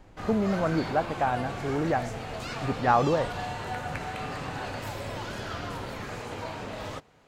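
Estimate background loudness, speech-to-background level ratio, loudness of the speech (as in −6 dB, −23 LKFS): −35.5 LKFS, 7.5 dB, −28.0 LKFS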